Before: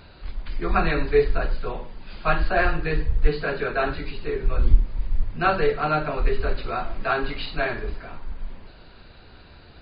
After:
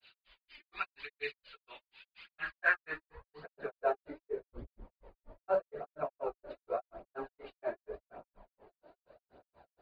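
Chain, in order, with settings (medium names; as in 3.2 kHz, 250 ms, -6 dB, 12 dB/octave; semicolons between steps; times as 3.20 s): granulator 149 ms, grains 4.2 per s, pitch spread up and down by 0 st; band-pass sweep 2.9 kHz -> 610 Hz, 2.01–3.79 s; phaser 0.85 Hz, delay 3.5 ms, feedback 45%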